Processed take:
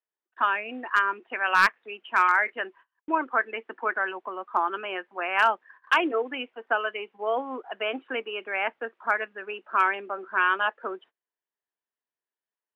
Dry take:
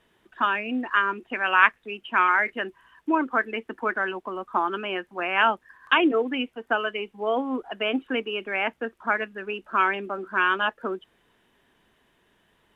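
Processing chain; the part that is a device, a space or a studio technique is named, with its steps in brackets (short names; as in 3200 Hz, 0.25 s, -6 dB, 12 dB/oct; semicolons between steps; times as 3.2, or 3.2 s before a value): walkie-talkie (BPF 470–2600 Hz; hard clip -11 dBFS, distortion -19 dB; gate -50 dBFS, range -31 dB)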